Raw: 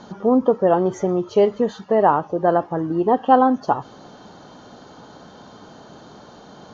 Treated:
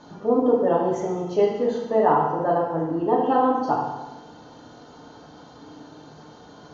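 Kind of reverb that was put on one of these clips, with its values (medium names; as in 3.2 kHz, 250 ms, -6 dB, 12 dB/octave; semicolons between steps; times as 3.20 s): FDN reverb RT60 1.1 s, low-frequency decay 1.1×, high-frequency decay 0.95×, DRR -3.5 dB; trim -8 dB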